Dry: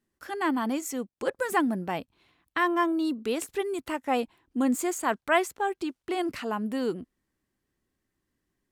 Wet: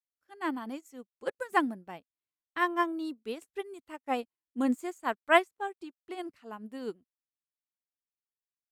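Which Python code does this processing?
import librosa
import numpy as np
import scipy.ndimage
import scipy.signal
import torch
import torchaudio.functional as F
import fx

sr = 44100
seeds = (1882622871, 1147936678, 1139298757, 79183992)

y = fx.upward_expand(x, sr, threshold_db=-46.0, expansion=2.5)
y = y * 10.0 ** (2.5 / 20.0)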